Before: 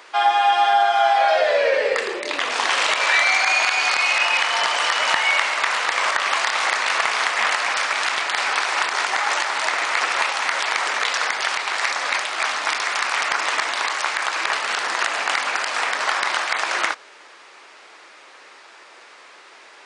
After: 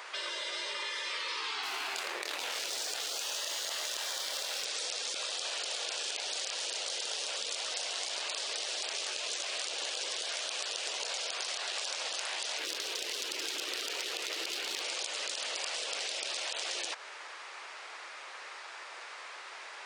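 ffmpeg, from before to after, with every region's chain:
-filter_complex "[0:a]asettb=1/sr,asplit=3[a][b][c];[a]atrim=end=1.634[d];[b]atrim=start=1.63:end=4.65,asetpts=PTS-STARTPTS,afade=t=in:d=0.004:c=qsin,afade=t=out:st=3.016:d=0.004:c=qsin,asplit=2[e][f];[f]adelay=26,volume=-9dB[g];[e][g]amix=inputs=2:normalize=0,atrim=end_sample=133182,aeval=exprs='sgn(val(0))*max(abs(val(0))-0.0266,0)':c=same[h];[c]atrim=start=4.646[i];[d][h]acrossfade=d=0.004:c1=hsin:c2=qsin[j];[j][i]acrossfade=d=0.004:c1=qsin:c2=hsin,asettb=1/sr,asplit=3[k][l][m];[k]atrim=end=12.584[n];[l]atrim=start=12.58:end=14.82,asetpts=PTS-STARTPTS,afade=t=in:d=0.004:c=qsin,afade=t=out:st=2.236:d=0.004:c=qsin,equalizer=f=410:t=o:w=1.8:g=10,adynamicsmooth=sensitivity=3.5:basefreq=3.6k[o];[m]atrim=start=14.816[p];[n][o]acrossfade=d=0.004:c1=hsin:c2=qsin[q];[q][p]acrossfade=d=0.004:c1=qsin:c2=hsin,highpass=520,afftfilt=real='re*lt(hypot(re,im),0.1)':imag='im*lt(hypot(re,im),0.1)':win_size=1024:overlap=0.75,acompressor=threshold=-33dB:ratio=6"

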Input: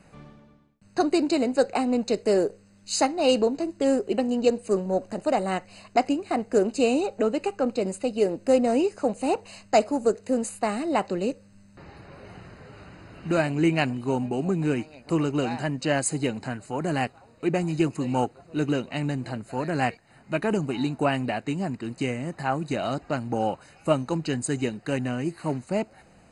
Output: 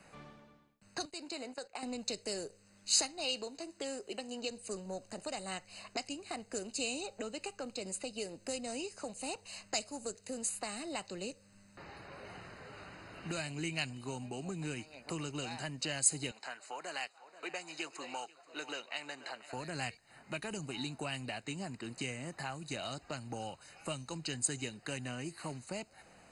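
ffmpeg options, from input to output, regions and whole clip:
-filter_complex "[0:a]asettb=1/sr,asplit=3[a][b][c];[a]atrim=end=1.054[d];[b]atrim=start=1.05:end=1.83,asetpts=PTS-STARTPTS,afade=t=in:d=0.004:c=qsin,afade=t=out:st=0.776:d=0.004:c=qsin,agate=range=-15dB:threshold=-31dB:ratio=16:release=100:detection=peak,lowshelf=f=470:g=-7.5,acompressor=threshold=-37dB:ratio=2:attack=3.2:release=140:knee=1:detection=peak[e];[c]atrim=start=1.826[f];[d][e]acrossfade=d=0.004:c1=hsin:c2=qsin[g];[g][f]acrossfade=d=0.004:c1=qsin:c2=hsin,asettb=1/sr,asplit=3[h][i][j];[h]atrim=end=3.244[k];[i]atrim=start=3.24:end=4.51,asetpts=PTS-STARTPTS,afade=t=in:d=0.004:c=qsin,afade=t=out:st=1.266:d=0.004:c=qsin,acrossover=split=4700[l][m];[m]acompressor=threshold=-45dB:ratio=4:attack=1:release=60[n];[l][n]amix=inputs=2:normalize=0,lowshelf=f=200:g=-10.5[o];[j]atrim=start=4.506[p];[k][o]acrossfade=d=0.004:c1=hsin:c2=qsin[q];[q][p]acrossfade=d=0.004:c1=qsin:c2=hsin,asettb=1/sr,asplit=3[r][s][t];[r]atrim=end=16.314[u];[s]atrim=start=16.31:end=19.53,asetpts=PTS-STARTPTS,afade=t=in:d=0.004:c=qsin,afade=t=out:st=3.216:d=0.004:c=qsin,highpass=630,lowpass=6.8k,aecho=1:1:484:0.0891,atrim=end_sample=142002[v];[t]atrim=start=19.526[w];[u][v]acrossfade=d=0.004:c1=hsin:c2=qsin[x];[x][w]acrossfade=d=0.004:c1=qsin:c2=hsin,lowshelf=f=410:g=-10.5,acrossover=split=140|3000[y][z][aa];[z]acompressor=threshold=-41dB:ratio=6[ab];[y][ab][aa]amix=inputs=3:normalize=0"

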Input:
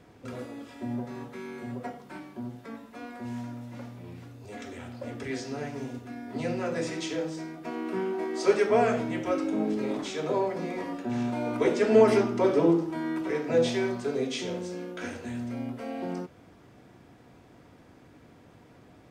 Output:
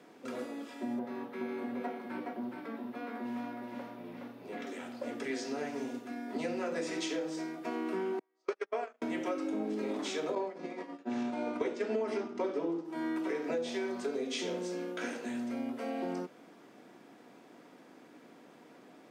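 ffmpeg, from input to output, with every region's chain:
-filter_complex "[0:a]asettb=1/sr,asplit=3[a][b][c];[a]atrim=end=0.994[d];[b]atrim=start=0.99:end=4.67,asetpts=PTS-STARTPTS,afade=t=in:d=0.004:c=qsin,afade=t=out:st=3.676:d=0.004:c=qsin,equalizer=f=7.3k:w=1.1:g=-14,aecho=1:1:419:0.631,atrim=end_sample=162288[e];[c]atrim=start=4.666[f];[d][e]acrossfade=d=0.004:c1=hsin:c2=qsin[g];[g][f]acrossfade=d=0.004:c1=qsin:c2=hsin,asettb=1/sr,asplit=3[h][i][j];[h]atrim=end=8.194[k];[i]atrim=start=8.19:end=9.02,asetpts=PTS-STARTPTS,afade=t=in:d=0.004:c=qsin,afade=t=out:st=0.826:d=0.004:c=qsin,agate=range=-43dB:threshold=-22dB:ratio=16:release=100:detection=peak,highpass=430,lowpass=6.7k,equalizer=f=1.2k:w=3.9:g=3.5[l];[j]atrim=start=9.016[m];[k][l]acrossfade=d=0.004:c1=hsin:c2=qsin[n];[n][m]acrossfade=d=0.004:c1=qsin:c2=hsin,asettb=1/sr,asplit=3[o][p][q];[o]atrim=end=10.354[r];[p]atrim=start=10.35:end=12.85,asetpts=PTS-STARTPTS,afade=t=in:d=0.004:c=qsin,afade=t=out:st=2.496:d=0.004:c=qsin,lowpass=7.3k,agate=range=-33dB:threshold=-25dB:ratio=3:release=100:detection=peak,acontrast=27[s];[q]atrim=start=12.846[t];[r][s]acrossfade=d=0.004:c1=hsin:c2=qsin[u];[u][t]acrossfade=d=0.004:c1=qsin:c2=hsin,highpass=f=210:w=0.5412,highpass=f=210:w=1.3066,acompressor=threshold=-31dB:ratio=10"

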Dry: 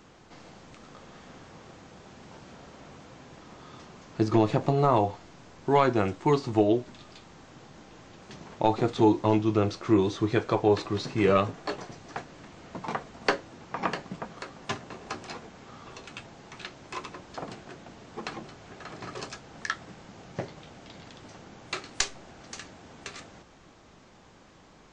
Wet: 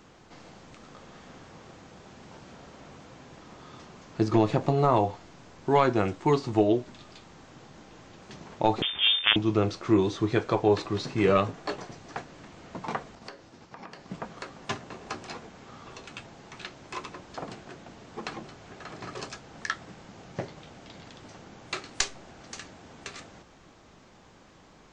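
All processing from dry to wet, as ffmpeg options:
-filter_complex "[0:a]asettb=1/sr,asplit=3[a][b][c];[a]atrim=end=8.824[d];[b]atrim=start=8.82:end=9.36,asetpts=PTS-STARTPTS,afade=t=in:d=0.004:c=qsin,afade=t=out:st=0.536:d=0.004:c=qsin,acompressor=mode=upward:threshold=-24dB:ratio=2.5:attack=3.2:release=140:knee=2.83:detection=peak,acrusher=bits=3:dc=4:mix=0:aa=0.000001,lowpass=f=3.1k:t=q:w=0.5098,lowpass=f=3.1k:t=q:w=0.6013,lowpass=f=3.1k:t=q:w=0.9,lowpass=f=3.1k:t=q:w=2.563,afreqshift=-3600[e];[c]atrim=start=9.356[f];[d][e]acrossfade=d=0.004:c1=hsin:c2=qsin[g];[g][f]acrossfade=d=0.004:c1=qsin:c2=hsin,asettb=1/sr,asplit=3[h][i][j];[h]atrim=end=13.154[k];[i]atrim=start=13.15:end=14.09,asetpts=PTS-STARTPTS,afade=t=in:d=0.004:c=qsin,afade=t=out:st=0.936:d=0.004:c=qsin,agate=range=-33dB:threshold=-44dB:ratio=3:release=100:detection=peak,equalizer=f=4.9k:w=2.3:g=5,acompressor=threshold=-43dB:ratio=4:attack=3.2:release=140:knee=1:detection=peak[l];[j]atrim=start=14.086[m];[k][l]acrossfade=d=0.004:c1=hsin:c2=qsin[n];[n][m]acrossfade=d=0.004:c1=qsin:c2=hsin"

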